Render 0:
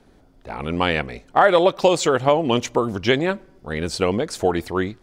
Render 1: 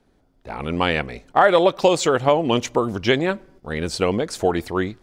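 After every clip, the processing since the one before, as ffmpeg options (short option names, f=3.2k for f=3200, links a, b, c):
-af "agate=range=-8dB:threshold=-48dB:ratio=16:detection=peak"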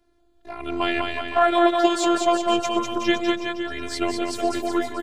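-filter_complex "[0:a]afftfilt=real='hypot(re,im)*cos(PI*b)':imag='0':win_size=512:overlap=0.75,asplit=2[a][b];[b]aecho=0:1:200|370|514.5|637.3|741.7:0.631|0.398|0.251|0.158|0.1[c];[a][c]amix=inputs=2:normalize=0"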